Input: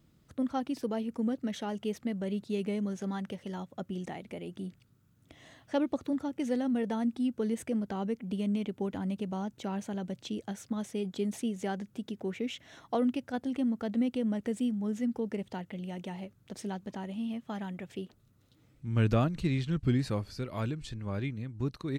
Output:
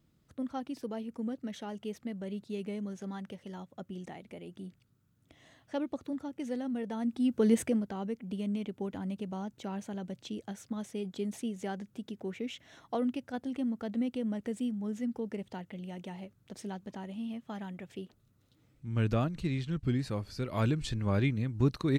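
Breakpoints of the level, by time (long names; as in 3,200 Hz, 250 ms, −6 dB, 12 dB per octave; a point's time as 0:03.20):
0:06.91 −5 dB
0:07.56 +8 dB
0:07.90 −3 dB
0:20.13 −3 dB
0:20.74 +6 dB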